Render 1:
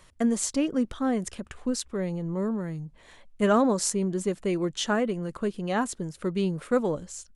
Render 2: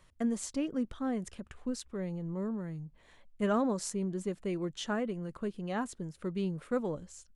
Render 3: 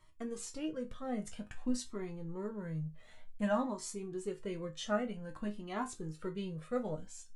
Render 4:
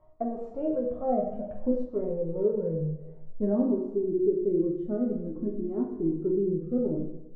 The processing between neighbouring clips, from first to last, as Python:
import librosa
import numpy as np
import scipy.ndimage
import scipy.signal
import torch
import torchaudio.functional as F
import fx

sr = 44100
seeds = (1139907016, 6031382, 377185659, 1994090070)

y1 = fx.bass_treble(x, sr, bass_db=3, treble_db=-3)
y1 = F.gain(torch.from_numpy(y1), -8.5).numpy()
y2 = fx.rider(y1, sr, range_db=4, speed_s=0.5)
y2 = fx.resonator_bank(y2, sr, root=44, chord='minor', decay_s=0.21)
y2 = fx.comb_cascade(y2, sr, direction='rising', hz=0.53)
y2 = F.gain(torch.from_numpy(y2), 12.5).numpy()
y3 = fx.filter_sweep_lowpass(y2, sr, from_hz=680.0, to_hz=340.0, start_s=0.95, end_s=4.11, q=7.0)
y3 = fx.rev_plate(y3, sr, seeds[0], rt60_s=0.9, hf_ratio=0.85, predelay_ms=0, drr_db=1.0)
y3 = F.gain(torch.from_numpy(y3), 3.5).numpy()